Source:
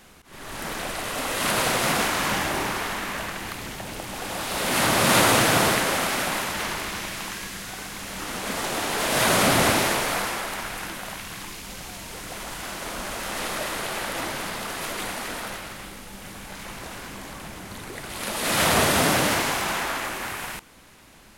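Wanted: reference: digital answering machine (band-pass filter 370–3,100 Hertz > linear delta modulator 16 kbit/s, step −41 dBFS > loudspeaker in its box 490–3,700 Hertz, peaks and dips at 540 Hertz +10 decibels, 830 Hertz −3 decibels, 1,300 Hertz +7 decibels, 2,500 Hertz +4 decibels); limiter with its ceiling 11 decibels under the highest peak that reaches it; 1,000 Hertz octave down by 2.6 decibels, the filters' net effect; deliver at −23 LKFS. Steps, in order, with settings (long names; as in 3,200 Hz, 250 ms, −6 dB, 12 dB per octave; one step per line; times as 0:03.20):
parametric band 1,000 Hz −7 dB
brickwall limiter −19 dBFS
band-pass filter 370–3,100 Hz
linear delta modulator 16 kbit/s, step −41 dBFS
loudspeaker in its box 490–3,700 Hz, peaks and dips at 540 Hz +10 dB, 830 Hz −3 dB, 1,300 Hz +7 dB, 2,500 Hz +4 dB
level +12 dB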